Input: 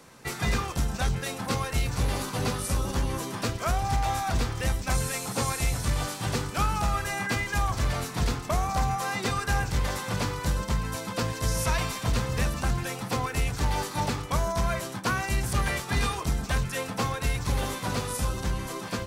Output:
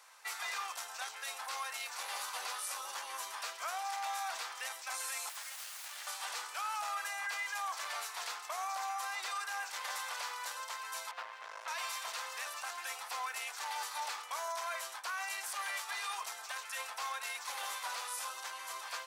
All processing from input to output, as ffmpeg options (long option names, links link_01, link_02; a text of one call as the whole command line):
ffmpeg -i in.wav -filter_complex "[0:a]asettb=1/sr,asplit=3[link_01][link_02][link_03];[link_01]atrim=end=5.294[link_04];[link_02]atrim=start=5.29:end=6.07,asetpts=PTS-STARTPTS,afade=type=in:duration=0.004:curve=qsin,afade=type=out:start_time=0.776:duration=0.004:curve=qsin,highpass=frequency=340:width=0.5412,highpass=frequency=340:width=1.3066,acompressor=threshold=-32dB:ratio=4:attack=3.2:release=140:knee=1:detection=peak,aeval=exprs='abs(val(0))':channel_layout=same[link_05];[link_03]atrim=start=6.066[link_06];[link_04][link_05]acrossfade=duration=0.004:curve1=hsin:curve2=qsin[link_07];[link_07][link_06]acrossfade=duration=0.004:curve1=qsin:curve2=hsin,asettb=1/sr,asplit=3[link_08][link_09][link_10];[link_08]atrim=end=11.114[link_11];[link_09]atrim=start=11.11:end=11.68,asetpts=PTS-STARTPTS,afade=type=in:duration=0.004:curve=qsin,afade=type=out:start_time=0.566:duration=0.004:curve=qsin,lowpass=2200,aeval=exprs='max(val(0),0)':channel_layout=same[link_12];[link_10]atrim=start=11.676[link_13];[link_11][link_12]acrossfade=duration=0.004:curve1=hsin:curve2=qsin[link_14];[link_14][link_13]acrossfade=duration=0.004:curve1=qsin:curve2=hsin,highpass=frequency=790:width=0.5412,highpass=frequency=790:width=1.3066,alimiter=level_in=1.5dB:limit=-24dB:level=0:latency=1:release=16,volume=-1.5dB,volume=-4.5dB" out.wav